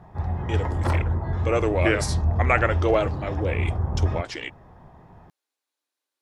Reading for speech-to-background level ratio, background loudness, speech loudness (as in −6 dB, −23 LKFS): 0.0 dB, −26.5 LKFS, −26.5 LKFS